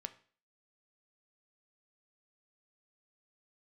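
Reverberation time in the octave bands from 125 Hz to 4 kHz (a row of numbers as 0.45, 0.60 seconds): 0.40, 0.45, 0.45, 0.45, 0.45, 0.45 seconds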